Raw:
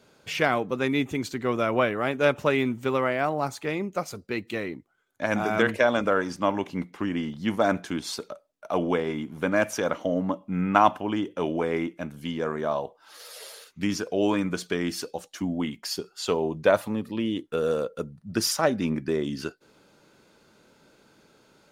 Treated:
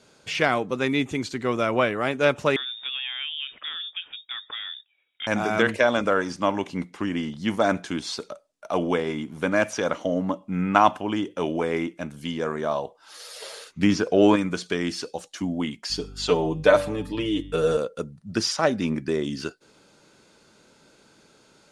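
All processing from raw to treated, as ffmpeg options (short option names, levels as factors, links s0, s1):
-filter_complex "[0:a]asettb=1/sr,asplit=3[s0][s1][s2];[s0]atrim=end=2.564[s3];[s1]atrim=start=2.56:end=5.27,asetpts=PTS-STARTPTS,afade=t=in:d=0.004:c=qsin,afade=t=out:st=2.706:d=0.004:c=qsin,equalizer=f=180:w=1.5:g=-8,acompressor=threshold=0.0178:ratio=2.5:attack=3.2:release=140:knee=1:detection=peak,lowpass=f=3200:t=q:w=0.5098,lowpass=f=3200:t=q:w=0.6013,lowpass=f=3200:t=q:w=0.9,lowpass=f=3200:t=q:w=2.563,afreqshift=-3800[s4];[s2]atrim=start=5.266[s5];[s3][s4]acrossfade=d=0.004:c1=hsin:c2=qsin[s6];[s6][s5]acrossfade=d=0.004:c1=qsin:c2=hsin,asettb=1/sr,asplit=3[s7][s8][s9];[s7]atrim=end=13.424[s10];[s8]atrim=start=13.42:end=14.36,asetpts=PTS-STARTPTS,afade=t=in:d=0.004:c=qsin,afade=t=out:st=0.936:d=0.004:c=qsin,highshelf=f=2700:g=-7.5,acontrast=62[s11];[s9]atrim=start=14.356[s12];[s10][s11]acrossfade=d=0.004:c1=hsin:c2=qsin[s13];[s13][s12]acrossfade=d=0.004:c1=qsin:c2=hsin,asettb=1/sr,asplit=3[s14][s15][s16];[s14]atrim=end=15.904[s17];[s15]atrim=start=15.9:end=17.77,asetpts=PTS-STARTPTS,afade=t=in:d=0.004:c=qsin,afade=t=out:st=1.866:d=0.004:c=qsin,aecho=1:1:6.7:0.86,atrim=end_sample=82467,bandreject=f=96.83:t=h:w=4,bandreject=f=193.66:t=h:w=4,bandreject=f=290.49:t=h:w=4,bandreject=f=387.32:t=h:w=4,bandreject=f=484.15:t=h:w=4,bandreject=f=580.98:t=h:w=4,bandreject=f=677.81:t=h:w=4,bandreject=f=774.64:t=h:w=4,bandreject=f=871.47:t=h:w=4,bandreject=f=968.3:t=h:w=4,bandreject=f=1065.13:t=h:w=4,bandreject=f=1161.96:t=h:w=4,bandreject=f=1258.79:t=h:w=4,bandreject=f=1355.62:t=h:w=4,bandreject=f=1452.45:t=h:w=4,bandreject=f=1549.28:t=h:w=4,bandreject=f=1646.11:t=h:w=4,bandreject=f=1742.94:t=h:w=4,bandreject=f=1839.77:t=h:w=4,bandreject=f=1936.6:t=h:w=4,bandreject=f=2033.43:t=h:w=4,bandreject=f=2130.26:t=h:w=4,bandreject=f=2227.09:t=h:w=4,bandreject=f=2323.92:t=h:w=4,bandreject=f=2420.75:t=h:w=4,bandreject=f=2517.58:t=h:w=4,bandreject=f=2614.41:t=h:w=4,bandreject=f=2711.24:t=h:w=4,bandreject=f=2808.07:t=h:w=4,bandreject=f=2904.9:t=h:w=4,bandreject=f=3001.73:t=h:w=4,bandreject=f=3098.56:t=h:w=4,bandreject=f=3195.39:t=h:w=4,bandreject=f=3292.22:t=h:w=4,bandreject=f=3389.05:t=h:w=4,bandreject=f=3485.88:t=h:w=4,bandreject=f=3582.71:t=h:w=4,bandreject=f=3679.54:t=h:w=4,aeval=exprs='val(0)+0.00891*(sin(2*PI*50*n/s)+sin(2*PI*2*50*n/s)/2+sin(2*PI*3*50*n/s)/3+sin(2*PI*4*50*n/s)/4+sin(2*PI*5*50*n/s)/5)':c=same[s18];[s16]atrim=start=17.766[s19];[s17][s18]acrossfade=d=0.004:c1=hsin:c2=qsin[s20];[s20][s19]acrossfade=d=0.004:c1=qsin:c2=hsin,lowpass=f=10000:w=0.5412,lowpass=f=10000:w=1.3066,acrossover=split=5400[s21][s22];[s22]acompressor=threshold=0.00316:ratio=4:attack=1:release=60[s23];[s21][s23]amix=inputs=2:normalize=0,highshelf=f=4300:g=7.5,volume=1.12"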